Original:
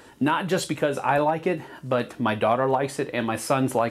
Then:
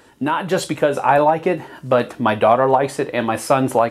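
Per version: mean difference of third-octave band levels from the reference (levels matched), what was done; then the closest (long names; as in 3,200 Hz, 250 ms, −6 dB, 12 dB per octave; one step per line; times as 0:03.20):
2.5 dB: dynamic equaliser 750 Hz, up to +5 dB, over −34 dBFS, Q 0.75
automatic gain control
level −1 dB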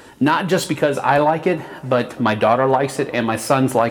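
1.5 dB: phase distortion by the signal itself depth 0.067 ms
delay with a low-pass on its return 126 ms, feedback 78%, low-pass 3,100 Hz, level −24 dB
level +6.5 dB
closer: second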